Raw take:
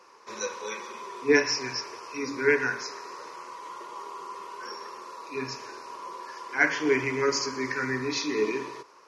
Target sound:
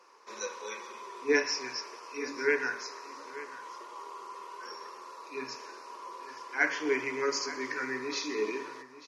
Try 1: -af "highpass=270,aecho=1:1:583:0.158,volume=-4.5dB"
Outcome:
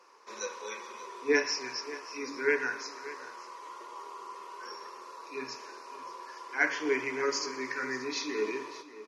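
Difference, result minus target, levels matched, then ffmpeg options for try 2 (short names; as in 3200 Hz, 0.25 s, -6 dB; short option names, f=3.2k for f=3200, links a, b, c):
echo 0.306 s early
-af "highpass=270,aecho=1:1:889:0.158,volume=-4.5dB"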